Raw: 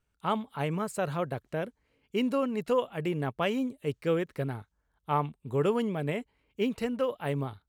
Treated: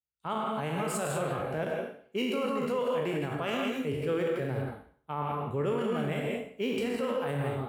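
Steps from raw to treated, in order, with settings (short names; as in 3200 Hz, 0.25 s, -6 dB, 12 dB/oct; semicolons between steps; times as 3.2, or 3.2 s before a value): spectral trails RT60 0.65 s; HPF 53 Hz; non-linear reverb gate 0.21 s rising, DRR 1 dB; limiter -22.5 dBFS, peak gain reduction 9.5 dB; three-band expander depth 70%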